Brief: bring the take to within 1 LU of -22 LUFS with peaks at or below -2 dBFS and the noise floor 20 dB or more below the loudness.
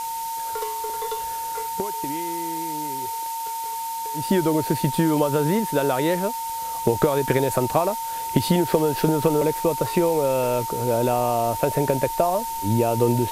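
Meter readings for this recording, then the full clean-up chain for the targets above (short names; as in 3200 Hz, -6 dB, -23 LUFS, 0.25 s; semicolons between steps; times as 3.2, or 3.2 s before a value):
steady tone 910 Hz; tone level -27 dBFS; noise floor -29 dBFS; noise floor target -43 dBFS; loudness -23.0 LUFS; peak -4.5 dBFS; loudness target -22.0 LUFS
-> notch 910 Hz, Q 30; noise print and reduce 14 dB; gain +1 dB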